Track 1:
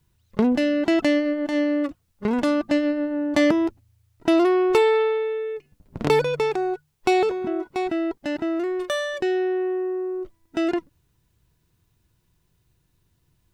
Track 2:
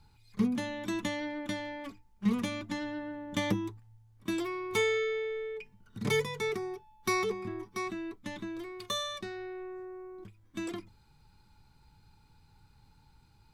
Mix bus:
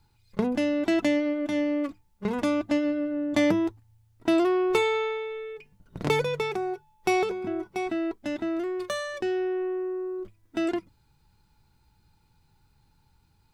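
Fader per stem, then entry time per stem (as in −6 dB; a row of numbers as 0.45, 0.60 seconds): −5.0, −3.5 decibels; 0.00, 0.00 seconds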